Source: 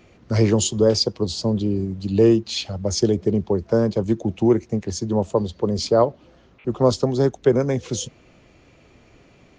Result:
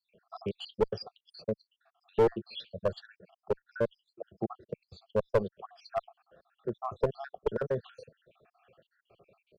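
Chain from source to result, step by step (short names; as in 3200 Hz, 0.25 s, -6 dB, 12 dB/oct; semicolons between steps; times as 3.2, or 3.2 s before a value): random spectral dropouts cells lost 77%; three-band isolator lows -21 dB, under 160 Hz, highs -19 dB, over 2800 Hz; fixed phaser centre 1400 Hz, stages 8; one-sided clip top -23.5 dBFS; gain -1 dB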